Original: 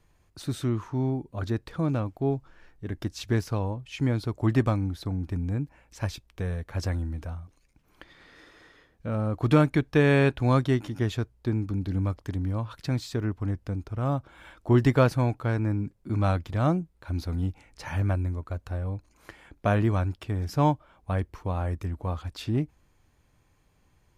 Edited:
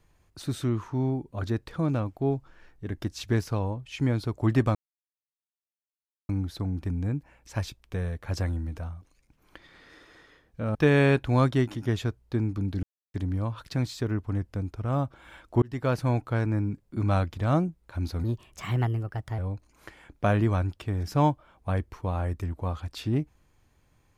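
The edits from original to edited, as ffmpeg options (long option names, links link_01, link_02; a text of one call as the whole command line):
ffmpeg -i in.wav -filter_complex "[0:a]asplit=8[link_01][link_02][link_03][link_04][link_05][link_06][link_07][link_08];[link_01]atrim=end=4.75,asetpts=PTS-STARTPTS,afade=type=out:start_time=4.746:duration=0.004:curve=hsin,apad=pad_dur=1.54[link_09];[link_02]atrim=start=4.75:end=9.212,asetpts=PTS-STARTPTS,afade=type=in:duration=0.004:curve=hsin[link_10];[link_03]atrim=start=9.878:end=11.96,asetpts=PTS-STARTPTS,afade=type=out:start_time=2.078:duration=0.004:curve=hsin[link_11];[link_04]atrim=start=11.96:end=12.27,asetpts=PTS-STARTPTS,volume=0[link_12];[link_05]atrim=start=12.27:end=14.75,asetpts=PTS-STARTPTS,afade=type=in:duration=0.004:curve=hsin,afade=type=out:start_time=2.476:duration=0.004:curve=hsin[link_13];[link_06]atrim=start=14.75:end=17.374,asetpts=PTS-STARTPTS,afade=type=in:duration=0.52[link_14];[link_07]atrim=start=17.37:end=18.8,asetpts=PTS-STARTPTS,asetrate=55125,aresample=44100,atrim=end_sample=50450,asetpts=PTS-STARTPTS[link_15];[link_08]atrim=start=18.796[link_16];[link_09][link_10]concat=n=2:v=0:a=1[link_17];[link_11][link_12][link_13][link_14]concat=n=4:v=0:a=1[link_18];[link_17][link_18]acrossfade=duration=0.004:curve1=hsin:curve2=hsin[link_19];[link_19][link_15]acrossfade=duration=0.004:curve1=hsin:curve2=hsin[link_20];[link_20][link_16]acrossfade=duration=0.004:curve1=hsin:curve2=hsin" out.wav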